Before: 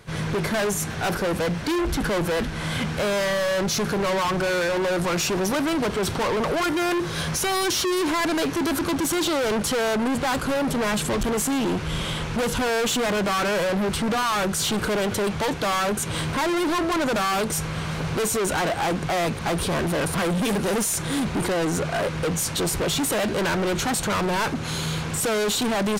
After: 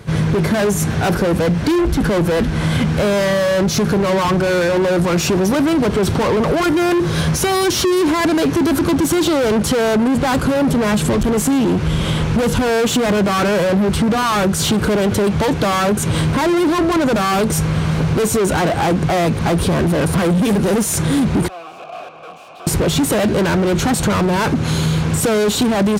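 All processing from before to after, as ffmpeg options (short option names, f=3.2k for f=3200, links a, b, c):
-filter_complex "[0:a]asettb=1/sr,asplit=3[a][b][c];[a]atrim=end=21.484[d];[b]atrim=start=21.48:end=22.67,asetpts=PTS-STARTPTS,afade=t=in:d=0.004:c=qsin,afade=t=out:st=1.186:d=0.004:c=qsin,bass=f=250:g=-11,treble=f=4k:g=2,aeval=exprs='(mod(15.8*val(0)+1,2)-1)/15.8':c=same,asplit=3[e][f][g];[e]bandpass=f=730:t=q:w=8,volume=0dB[h];[f]bandpass=f=1.09k:t=q:w=8,volume=-6dB[i];[g]bandpass=f=2.44k:t=q:w=8,volume=-9dB[j];[h][i][j]amix=inputs=3:normalize=0[k];[c]atrim=start=22.666[l];[d][k]acrossfade=d=0.004:c1=hsin:c2=qsin[m];[m][l]acrossfade=d=0.004:c1=qsin:c2=hsin,highpass=47,lowshelf=f=480:g=9.5,acompressor=threshold=-19dB:ratio=6,volume=6dB"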